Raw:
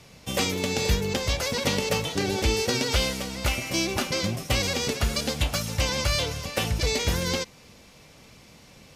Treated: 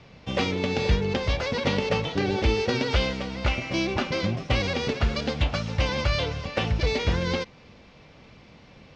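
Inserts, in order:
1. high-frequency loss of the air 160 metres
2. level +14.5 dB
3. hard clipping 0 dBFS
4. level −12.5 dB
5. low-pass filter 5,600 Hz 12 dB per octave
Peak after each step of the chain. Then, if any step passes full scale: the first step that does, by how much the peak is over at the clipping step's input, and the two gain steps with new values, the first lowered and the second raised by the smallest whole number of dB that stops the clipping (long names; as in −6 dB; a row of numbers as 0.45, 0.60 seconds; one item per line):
−11.5, +3.0, 0.0, −12.5, −12.0 dBFS
step 2, 3.0 dB
step 2 +11.5 dB, step 4 −9.5 dB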